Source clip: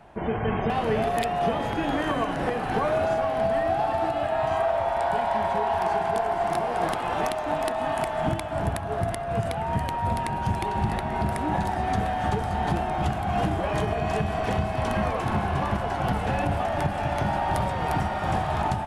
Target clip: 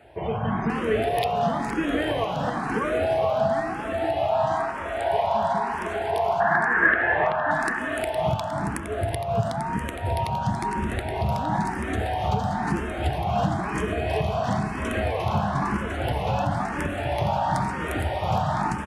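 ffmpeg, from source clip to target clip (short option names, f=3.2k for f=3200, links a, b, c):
-filter_complex "[0:a]highpass=53,equalizer=f=770:w=5.8:g=-3,asettb=1/sr,asplit=3[a][b][c];[a]atrim=end=6.404[d];[b]atrim=start=6.4:end=7.51,asetpts=PTS-STARTPTS,afade=t=in:d=0.004:c=qsin,afade=t=out:st=1.106:d=0.004:c=qsin,lowpass=f=1.7k:t=q:w=13[e];[c]atrim=start=7.506[f];[d][e]acrossfade=d=0.004:c1=hsin:c2=qsin[g];[g][f]acrossfade=d=0.004:c1=qsin:c2=hsin,aecho=1:1:463:0.376,asplit=2[h][i];[i]afreqshift=1[j];[h][j]amix=inputs=2:normalize=1,volume=3.5dB"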